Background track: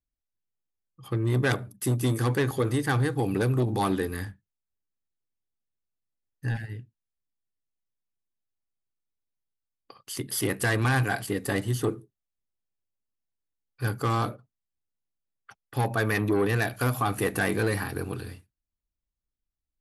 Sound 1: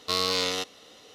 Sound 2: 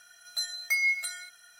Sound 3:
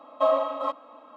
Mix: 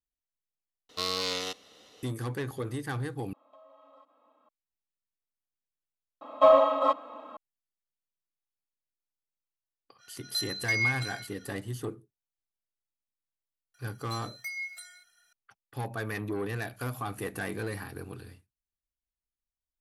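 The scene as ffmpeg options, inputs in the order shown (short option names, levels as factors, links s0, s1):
-filter_complex "[3:a]asplit=2[s0][s1];[2:a]asplit=2[s2][s3];[0:a]volume=0.355[s4];[s0]acompressor=threshold=0.0141:ratio=6:attack=3.2:release=140:knee=1:detection=peak[s5];[s1]acontrast=82[s6];[s2]highshelf=f=7300:t=q:w=1.5:g=-14[s7];[s3]acontrast=68[s8];[s4]asplit=4[s9][s10][s11][s12];[s9]atrim=end=0.894[s13];[1:a]atrim=end=1.14,asetpts=PTS-STARTPTS,volume=0.562[s14];[s10]atrim=start=2.026:end=3.334[s15];[s5]atrim=end=1.16,asetpts=PTS-STARTPTS,volume=0.141[s16];[s11]atrim=start=4.486:end=6.214[s17];[s6]atrim=end=1.16,asetpts=PTS-STARTPTS,volume=0.708[s18];[s12]atrim=start=7.366[s19];[s7]atrim=end=1.59,asetpts=PTS-STARTPTS,volume=0.75,afade=t=in:d=0.05,afade=t=out:st=1.54:d=0.05,adelay=9980[s20];[s8]atrim=end=1.59,asetpts=PTS-STARTPTS,volume=0.133,afade=t=in:d=0.004:c=hsin,afade=t=out:st=1.586:d=0.004:c=hsin,adelay=13740[s21];[s13][s14]acrossfade=d=0.004:c1=hsin:c2=hsin[s22];[s22][s15]acrossfade=d=0.004:c1=hsin:c2=hsin[s23];[s23][s16]acrossfade=d=0.004:c1=hsin:c2=hsin[s24];[s24][s17]acrossfade=d=0.004:c1=hsin:c2=hsin[s25];[s25][s18]acrossfade=d=0.004:c1=hsin:c2=hsin[s26];[s26][s19]acrossfade=d=0.004:c1=hsin:c2=hsin[s27];[s27][s20][s21]amix=inputs=3:normalize=0"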